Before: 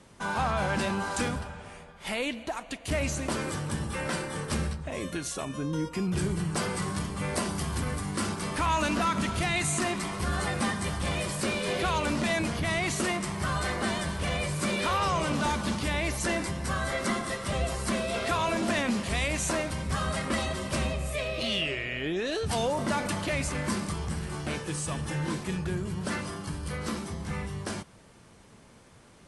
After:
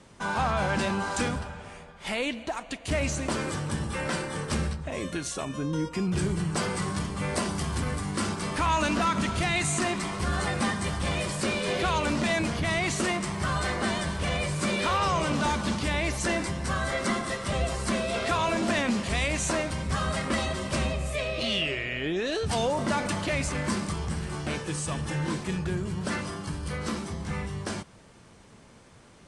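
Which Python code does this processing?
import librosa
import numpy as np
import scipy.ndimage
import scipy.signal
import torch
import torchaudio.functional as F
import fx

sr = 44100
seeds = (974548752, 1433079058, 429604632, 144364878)

y = scipy.signal.sosfilt(scipy.signal.butter(4, 9600.0, 'lowpass', fs=sr, output='sos'), x)
y = y * 10.0 ** (1.5 / 20.0)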